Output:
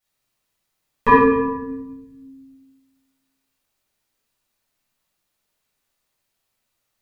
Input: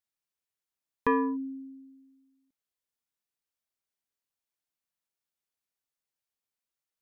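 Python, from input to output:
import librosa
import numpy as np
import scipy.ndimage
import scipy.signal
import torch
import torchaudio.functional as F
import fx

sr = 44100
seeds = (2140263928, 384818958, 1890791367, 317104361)

y = fx.room_shoebox(x, sr, seeds[0], volume_m3=480.0, walls='mixed', distance_m=6.6)
y = y * 10.0 ** (3.0 / 20.0)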